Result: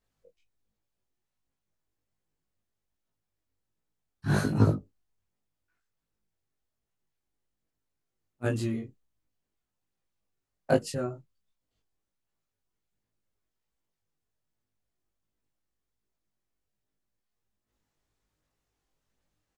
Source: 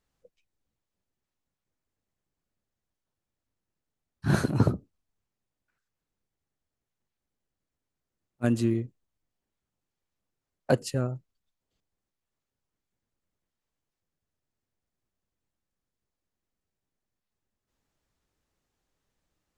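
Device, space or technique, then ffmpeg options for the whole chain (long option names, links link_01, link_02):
double-tracked vocal: -filter_complex "[0:a]asplit=2[link_01][link_02];[link_02]adelay=19,volume=-2.5dB[link_03];[link_01][link_03]amix=inputs=2:normalize=0,flanger=delay=19:depth=2.8:speed=1.3"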